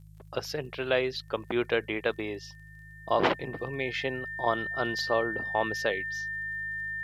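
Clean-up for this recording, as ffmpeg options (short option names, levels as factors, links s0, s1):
-af "adeclick=t=4,bandreject=f=52.3:t=h:w=4,bandreject=f=104.6:t=h:w=4,bandreject=f=156.9:t=h:w=4,bandreject=f=1800:w=30,agate=range=0.0891:threshold=0.00891"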